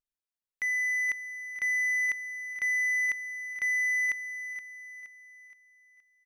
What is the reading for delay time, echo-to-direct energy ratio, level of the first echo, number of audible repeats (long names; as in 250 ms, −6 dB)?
471 ms, −10.0 dB, −11.0 dB, 4